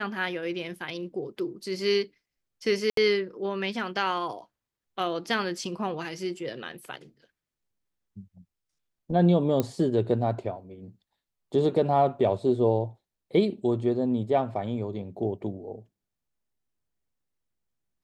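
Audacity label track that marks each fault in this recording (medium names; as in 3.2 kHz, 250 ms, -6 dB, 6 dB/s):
2.900000	2.970000	dropout 73 ms
9.600000	9.600000	pop -12 dBFS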